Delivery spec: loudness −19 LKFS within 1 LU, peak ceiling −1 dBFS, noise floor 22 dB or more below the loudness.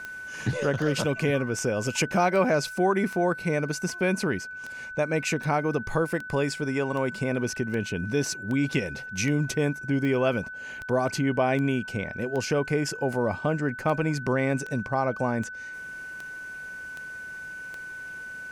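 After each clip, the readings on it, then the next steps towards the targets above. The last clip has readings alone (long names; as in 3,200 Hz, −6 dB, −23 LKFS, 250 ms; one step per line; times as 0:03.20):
number of clicks 25; interfering tone 1,500 Hz; level of the tone −36 dBFS; integrated loudness −27.5 LKFS; sample peak −11.0 dBFS; target loudness −19.0 LKFS
→ click removal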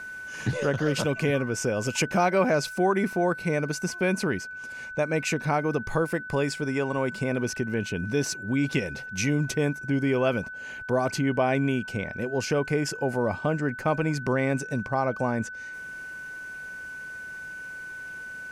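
number of clicks 1; interfering tone 1,500 Hz; level of the tone −36 dBFS
→ notch filter 1,500 Hz, Q 30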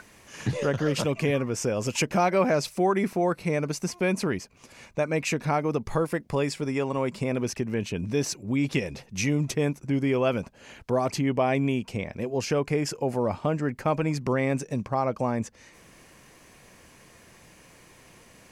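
interfering tone none found; integrated loudness −27.0 LKFS; sample peak −11.0 dBFS; target loudness −19.0 LKFS
→ level +8 dB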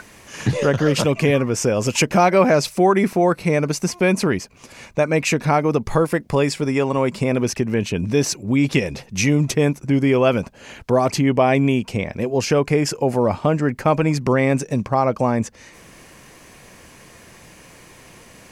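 integrated loudness −19.0 LKFS; sample peak −3.0 dBFS; background noise floor −46 dBFS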